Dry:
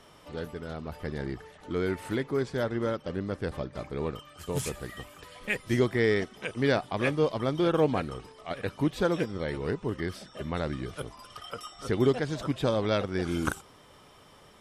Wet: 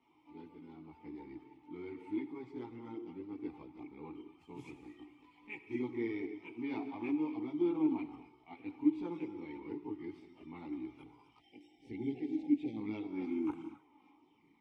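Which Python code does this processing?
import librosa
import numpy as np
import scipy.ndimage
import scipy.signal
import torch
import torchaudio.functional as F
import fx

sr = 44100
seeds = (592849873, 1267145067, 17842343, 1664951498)

y = fx.rev_gated(x, sr, seeds[0], gate_ms=290, shape='flat', drr_db=9.0)
y = fx.spec_erase(y, sr, start_s=11.38, length_s=1.38, low_hz=850.0, high_hz=1700.0)
y = fx.chorus_voices(y, sr, voices=6, hz=0.61, base_ms=18, depth_ms=1.9, mix_pct=60)
y = fx.vowel_filter(y, sr, vowel='u')
y = y * 10.0 ** (1.5 / 20.0)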